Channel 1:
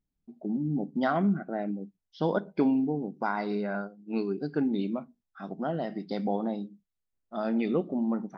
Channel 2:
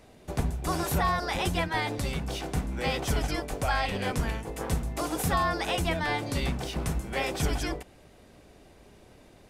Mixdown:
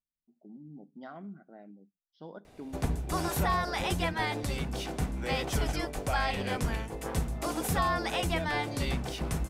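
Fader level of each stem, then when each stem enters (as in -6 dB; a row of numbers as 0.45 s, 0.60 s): -18.5 dB, -2.0 dB; 0.00 s, 2.45 s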